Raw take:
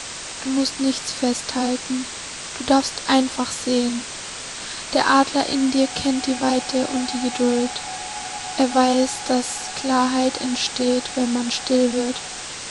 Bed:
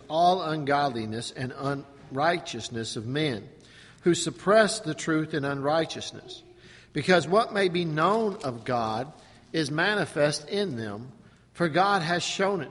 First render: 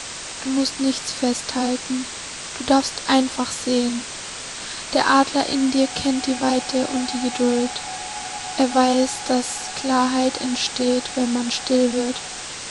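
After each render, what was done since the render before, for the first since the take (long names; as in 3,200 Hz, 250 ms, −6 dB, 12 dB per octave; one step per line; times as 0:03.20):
no processing that can be heard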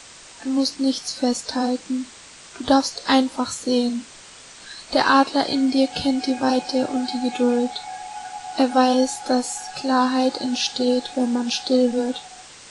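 noise reduction from a noise print 11 dB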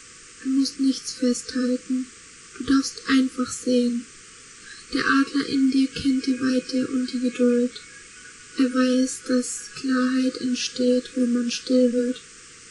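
brick-wall band-stop 510–1,100 Hz
parametric band 3,800 Hz −9 dB 0.52 octaves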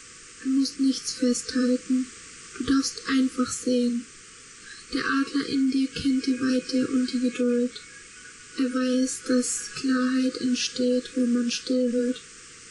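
brickwall limiter −15 dBFS, peak gain reduction 6.5 dB
speech leveller 0.5 s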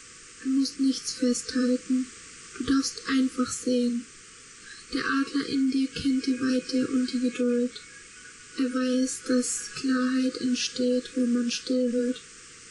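level −1.5 dB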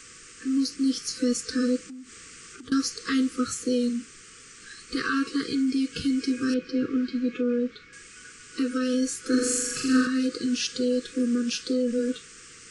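0:01.82–0:02.72: downward compressor 5 to 1, threshold −41 dBFS
0:06.54–0:07.93: high-frequency loss of the air 220 metres
0:09.28–0:10.07: flutter between parallel walls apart 7.3 metres, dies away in 1.1 s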